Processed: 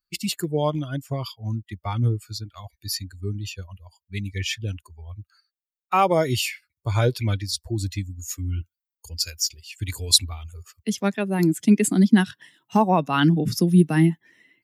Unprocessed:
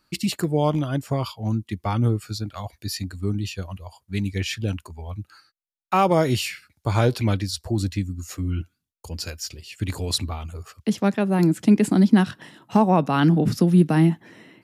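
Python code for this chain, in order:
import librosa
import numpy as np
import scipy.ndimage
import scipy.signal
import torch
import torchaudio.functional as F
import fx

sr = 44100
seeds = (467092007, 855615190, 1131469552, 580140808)

y = fx.bin_expand(x, sr, power=1.5)
y = fx.high_shelf(y, sr, hz=2400.0, db=fx.steps((0.0, 5.0), (7.82, 11.0)))
y = F.gain(torch.from_numpy(y), 1.0).numpy()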